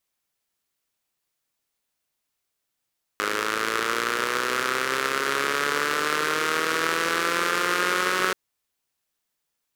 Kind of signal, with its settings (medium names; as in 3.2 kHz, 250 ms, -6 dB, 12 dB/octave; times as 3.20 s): four-cylinder engine model, changing speed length 5.13 s, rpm 3100, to 5600, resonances 440/1300 Hz